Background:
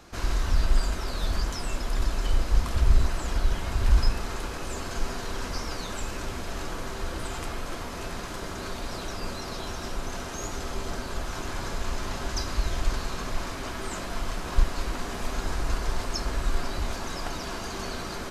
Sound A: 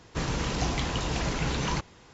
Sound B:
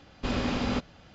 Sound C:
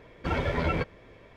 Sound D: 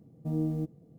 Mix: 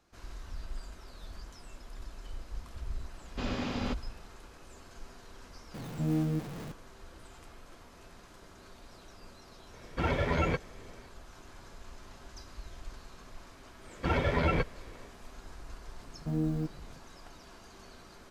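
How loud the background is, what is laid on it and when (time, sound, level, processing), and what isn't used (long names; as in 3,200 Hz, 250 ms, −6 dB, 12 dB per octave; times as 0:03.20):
background −18.5 dB
0:03.14: mix in B −5.5 dB + high-pass filter 46 Hz
0:05.74: mix in D −1 dB + converter with a step at zero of −36 dBFS
0:09.73: mix in C −1.5 dB
0:13.79: mix in C −0.5 dB, fades 0.10 s
0:16.01: mix in D −1 dB
not used: A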